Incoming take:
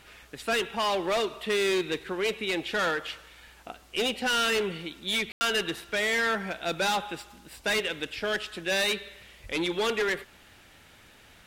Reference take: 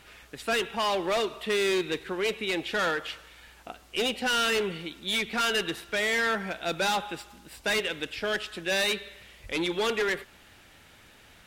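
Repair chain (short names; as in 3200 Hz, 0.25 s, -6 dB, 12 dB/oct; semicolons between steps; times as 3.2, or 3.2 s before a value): room tone fill 5.32–5.41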